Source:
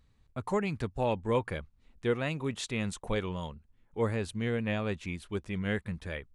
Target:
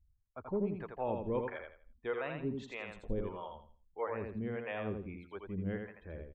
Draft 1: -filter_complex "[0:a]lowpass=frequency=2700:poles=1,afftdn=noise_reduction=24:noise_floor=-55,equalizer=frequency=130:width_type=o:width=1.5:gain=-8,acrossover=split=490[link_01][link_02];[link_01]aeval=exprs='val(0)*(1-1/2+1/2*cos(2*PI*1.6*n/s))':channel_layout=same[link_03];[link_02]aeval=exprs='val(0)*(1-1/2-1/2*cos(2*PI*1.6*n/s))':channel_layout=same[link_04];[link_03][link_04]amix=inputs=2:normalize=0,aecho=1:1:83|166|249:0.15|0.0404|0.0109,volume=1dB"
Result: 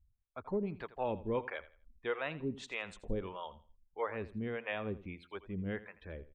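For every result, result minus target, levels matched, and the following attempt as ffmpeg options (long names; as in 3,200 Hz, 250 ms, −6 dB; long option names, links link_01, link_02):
echo-to-direct −12 dB; 2,000 Hz band +3.5 dB
-filter_complex "[0:a]lowpass=frequency=2700:poles=1,afftdn=noise_reduction=24:noise_floor=-55,equalizer=frequency=130:width_type=o:width=1.5:gain=-8,acrossover=split=490[link_01][link_02];[link_01]aeval=exprs='val(0)*(1-1/2+1/2*cos(2*PI*1.6*n/s))':channel_layout=same[link_03];[link_02]aeval=exprs='val(0)*(1-1/2-1/2*cos(2*PI*1.6*n/s))':channel_layout=same[link_04];[link_03][link_04]amix=inputs=2:normalize=0,aecho=1:1:83|166|249|332:0.596|0.161|0.0434|0.0117,volume=1dB"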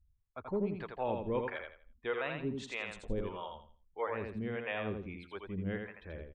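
2,000 Hz band +3.5 dB
-filter_complex "[0:a]lowpass=frequency=1100:poles=1,afftdn=noise_reduction=24:noise_floor=-55,equalizer=frequency=130:width_type=o:width=1.5:gain=-8,acrossover=split=490[link_01][link_02];[link_01]aeval=exprs='val(0)*(1-1/2+1/2*cos(2*PI*1.6*n/s))':channel_layout=same[link_03];[link_02]aeval=exprs='val(0)*(1-1/2-1/2*cos(2*PI*1.6*n/s))':channel_layout=same[link_04];[link_03][link_04]amix=inputs=2:normalize=0,aecho=1:1:83|166|249|332:0.596|0.161|0.0434|0.0117,volume=1dB"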